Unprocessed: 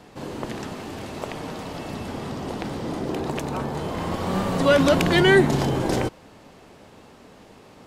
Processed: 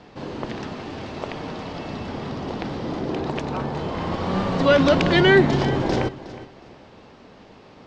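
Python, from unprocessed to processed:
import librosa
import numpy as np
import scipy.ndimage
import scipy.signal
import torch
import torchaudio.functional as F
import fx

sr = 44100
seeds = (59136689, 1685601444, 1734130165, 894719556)

p1 = scipy.signal.sosfilt(scipy.signal.butter(4, 5500.0, 'lowpass', fs=sr, output='sos'), x)
p2 = p1 + fx.echo_feedback(p1, sr, ms=364, feedback_pct=26, wet_db=-16.0, dry=0)
y = p2 * 10.0 ** (1.0 / 20.0)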